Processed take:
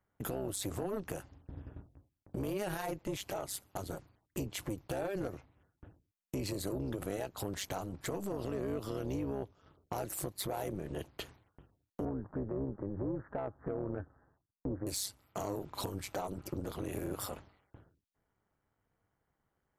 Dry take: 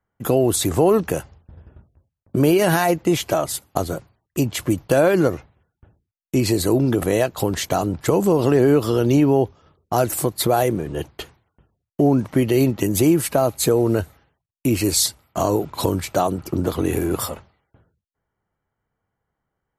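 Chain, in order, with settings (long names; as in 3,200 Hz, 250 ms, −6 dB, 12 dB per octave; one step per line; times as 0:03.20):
0:12.05–0:14.87: Butterworth low-pass 1,700 Hz 96 dB per octave
downward compressor 3 to 1, threshold −36 dBFS, peak gain reduction 18 dB
soft clipping −26.5 dBFS, distortion −17 dB
amplitude modulation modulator 200 Hz, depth 70%
level +1 dB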